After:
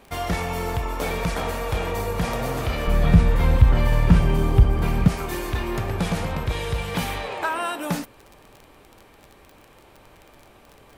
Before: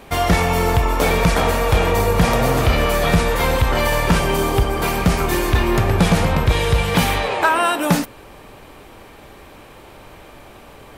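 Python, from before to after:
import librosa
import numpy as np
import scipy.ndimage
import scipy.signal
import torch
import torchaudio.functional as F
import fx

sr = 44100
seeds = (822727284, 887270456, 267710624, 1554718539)

y = fx.bass_treble(x, sr, bass_db=14, treble_db=-6, at=(2.87, 5.08))
y = fx.dmg_crackle(y, sr, seeds[0], per_s=23.0, level_db=-23.0)
y = y * librosa.db_to_amplitude(-9.5)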